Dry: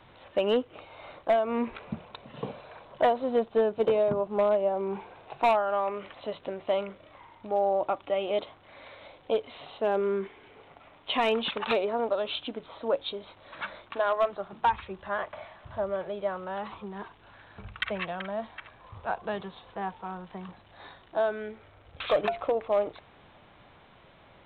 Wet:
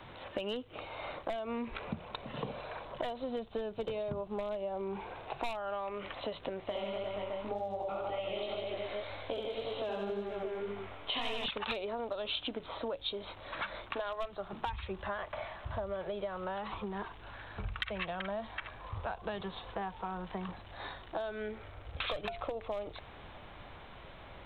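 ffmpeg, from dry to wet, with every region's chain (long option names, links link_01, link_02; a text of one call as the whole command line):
ffmpeg -i in.wav -filter_complex "[0:a]asettb=1/sr,asplit=3[link_01][link_02][link_03];[link_01]atrim=end=6.604[link_04];[link_02]atrim=start=6.6:end=11.46,asetpts=PTS-STARTPTS,afade=type=in:duration=0.004:curve=qsin,afade=type=out:start_time=4.856:duration=0.004:curve=qsin,aecho=1:1:70|150.5|243.1|349.5|472|612.8:0.794|0.631|0.501|0.398|0.316|0.251,atrim=end_sample=214326,flanger=delay=18.5:depth=5.9:speed=1.9[link_05];[link_03]atrim=start=11.456[link_06];[link_04][link_05]acrossfade=duration=0.004:curve1=hsin:curve2=qsin[link_07];[link_07][link_06]acrossfade=duration=0.004:curve1=qsin:curve2=hsin,acrossover=split=150|3000[link_08][link_09][link_10];[link_09]acompressor=threshold=-35dB:ratio=6[link_11];[link_08][link_11][link_10]amix=inputs=3:normalize=0,asubboost=boost=2.5:cutoff=83,acompressor=threshold=-40dB:ratio=2.5,volume=4.5dB" out.wav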